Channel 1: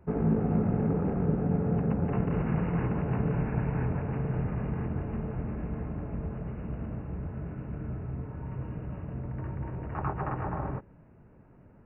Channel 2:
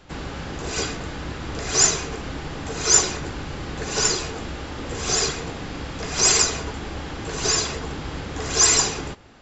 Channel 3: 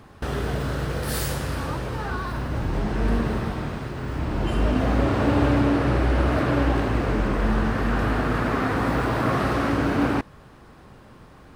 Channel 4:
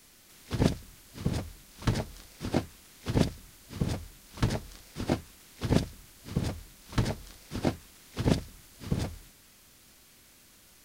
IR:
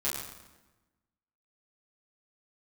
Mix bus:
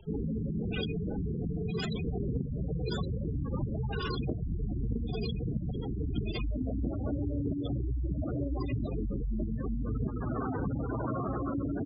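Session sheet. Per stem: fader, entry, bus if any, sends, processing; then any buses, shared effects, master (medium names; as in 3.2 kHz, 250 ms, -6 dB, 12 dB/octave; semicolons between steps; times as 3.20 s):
-1.0 dB, 0.00 s, no send, saturation -26 dBFS, distortion -12 dB
-4.5 dB, 0.00 s, no send, resonant high shelf 4.9 kHz -12.5 dB, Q 3; gain riding within 3 dB 0.5 s
-3.0 dB, 1.85 s, no send, elliptic low-pass 9.5 kHz, stop band 40 dB
+0.5 dB, 1.75 s, no send, gate with hold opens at -43 dBFS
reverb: none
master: spectral gate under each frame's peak -10 dB strong; compression 6:1, threshold -29 dBFS, peak gain reduction 11.5 dB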